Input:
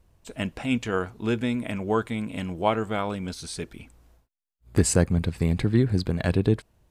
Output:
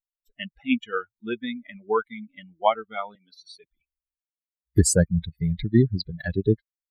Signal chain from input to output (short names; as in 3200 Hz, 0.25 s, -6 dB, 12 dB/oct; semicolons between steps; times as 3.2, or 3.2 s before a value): per-bin expansion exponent 3; 3.15–3.64 three-band isolator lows -22 dB, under 300 Hz, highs -16 dB, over 4300 Hz; gain +6.5 dB